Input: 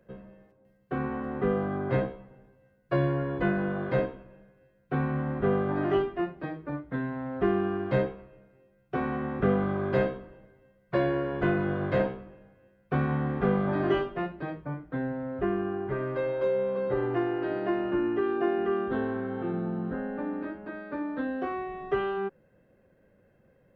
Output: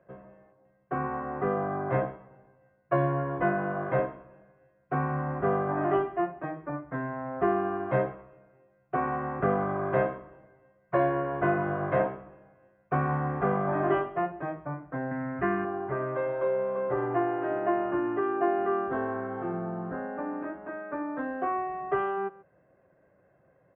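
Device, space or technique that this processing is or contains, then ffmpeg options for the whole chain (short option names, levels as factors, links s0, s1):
bass cabinet: -filter_complex "[0:a]asettb=1/sr,asplit=3[s0][s1][s2];[s0]atrim=end=15.114[s3];[s1]atrim=start=15.11:end=15.65,asetpts=PTS-STARTPTS,afade=t=in:d=0.004:c=qsin,afade=t=out:st=0.536:d=0.004:c=qsin,equalizer=f=125:t=o:w=1:g=5,equalizer=f=250:t=o:w=1:g=7,equalizer=f=500:t=o:w=1:g=-8,equalizer=f=2000:t=o:w=1:g=11[s4];[s2]atrim=start=15.646[s5];[s3][s4]acrossfade=d=0.004:c1=hsin:c2=qsin[s6];[s6][s5]acrossfade=d=0.004:c1=qsin:c2=hsin,highpass=80,equalizer=f=95:t=q:w=4:g=-5,equalizer=f=220:t=q:w=4:g=-10,equalizer=f=470:t=q:w=4:g=-4,equalizer=f=680:t=q:w=4:g=8,equalizer=f=1100:t=q:w=4:g=6,lowpass=f=2300:w=0.5412,lowpass=f=2300:w=1.3066,aecho=1:1:136:0.0891"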